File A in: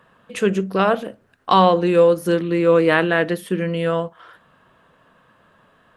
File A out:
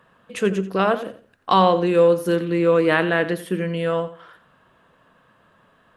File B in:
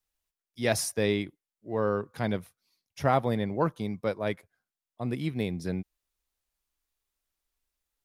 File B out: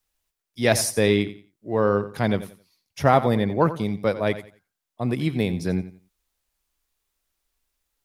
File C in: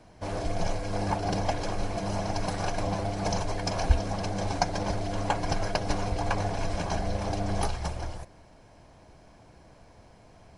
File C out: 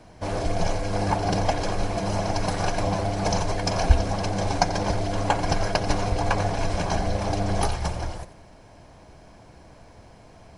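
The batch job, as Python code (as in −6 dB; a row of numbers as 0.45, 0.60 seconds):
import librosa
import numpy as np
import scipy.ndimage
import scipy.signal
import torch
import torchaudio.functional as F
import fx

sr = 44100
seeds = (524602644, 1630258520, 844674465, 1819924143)

y = fx.echo_feedback(x, sr, ms=88, feedback_pct=26, wet_db=-14.0)
y = y * 10.0 ** (-3 / 20.0) / np.max(np.abs(y))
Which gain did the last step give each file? −2.0, +7.0, +5.0 decibels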